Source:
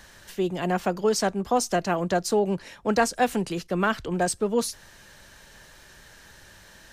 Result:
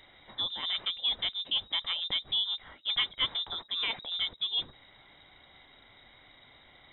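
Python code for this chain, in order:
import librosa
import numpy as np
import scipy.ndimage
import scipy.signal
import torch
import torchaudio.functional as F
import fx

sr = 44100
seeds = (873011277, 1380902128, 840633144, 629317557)

y = fx.peak_eq(x, sr, hz=1200.0, db=-12.5, octaves=0.37)
y = fx.freq_invert(y, sr, carrier_hz=3800)
y = fx.high_shelf(y, sr, hz=2200.0, db=-11.0)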